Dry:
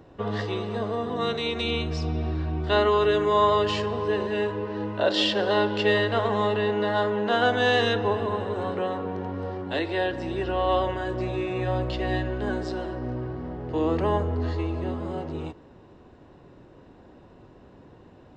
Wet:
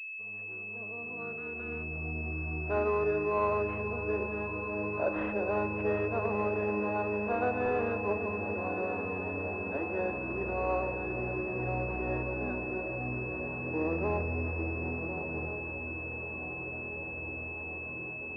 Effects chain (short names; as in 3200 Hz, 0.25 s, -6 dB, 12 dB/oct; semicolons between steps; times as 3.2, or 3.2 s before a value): opening faded in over 2.83 s; diffused feedback echo 1.359 s, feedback 75%, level -10 dB; pulse-width modulation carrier 2600 Hz; gain -7.5 dB